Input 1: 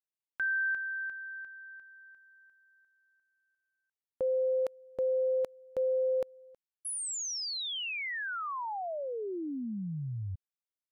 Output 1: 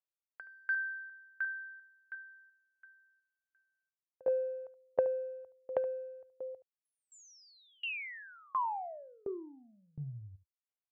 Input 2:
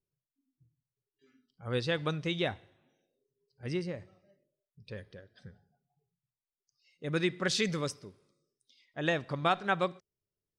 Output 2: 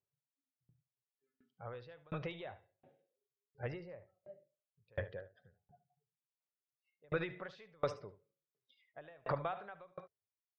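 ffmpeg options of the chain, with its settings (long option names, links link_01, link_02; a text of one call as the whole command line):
ffmpeg -i in.wav -filter_complex "[0:a]asplit=2[link_01][link_02];[link_02]asoftclip=type=tanh:threshold=-32dB,volume=-6dB[link_03];[link_01][link_03]amix=inputs=2:normalize=0,highpass=frequency=79:width=0.5412,highpass=frequency=79:width=1.3066,acompressor=threshold=-43dB:ratio=6:attack=38:release=31:knee=6:detection=peak,aemphasis=mode=reproduction:type=bsi,afftdn=noise_reduction=13:noise_floor=-62,lowpass=3000,lowshelf=frequency=390:width_type=q:width=1.5:gain=-13,acontrast=25,aecho=1:1:73:0.251,aeval=exprs='val(0)*pow(10,-34*if(lt(mod(1.4*n/s,1),2*abs(1.4)/1000),1-mod(1.4*n/s,1)/(2*abs(1.4)/1000),(mod(1.4*n/s,1)-2*abs(1.4)/1000)/(1-2*abs(1.4)/1000))/20)':channel_layout=same,volume=4.5dB" out.wav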